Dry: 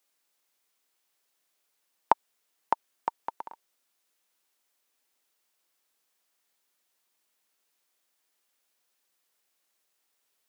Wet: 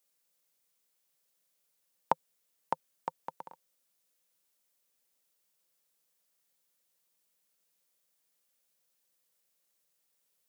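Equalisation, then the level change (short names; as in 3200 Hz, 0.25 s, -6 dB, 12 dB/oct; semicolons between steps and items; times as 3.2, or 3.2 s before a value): bell 160 Hz +14 dB 0.84 oct; bell 520 Hz +9 dB 0.26 oct; high shelf 4800 Hz +8.5 dB; -7.5 dB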